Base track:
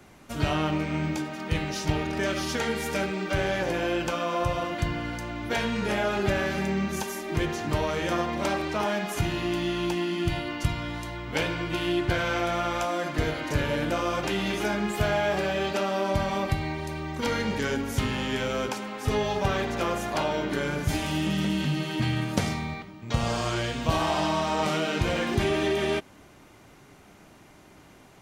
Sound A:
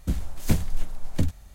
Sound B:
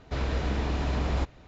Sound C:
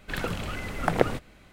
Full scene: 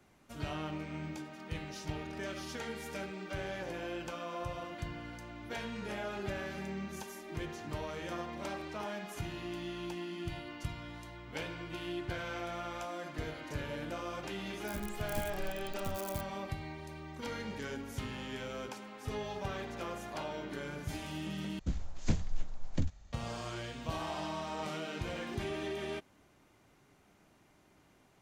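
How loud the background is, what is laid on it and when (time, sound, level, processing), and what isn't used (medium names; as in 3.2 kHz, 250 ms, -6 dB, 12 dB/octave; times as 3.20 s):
base track -13 dB
14.67 s: add A -18 dB + zero-crossing glitches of -16.5 dBFS
21.59 s: replace with A -8.5 dB + resampled via 16 kHz
not used: B, C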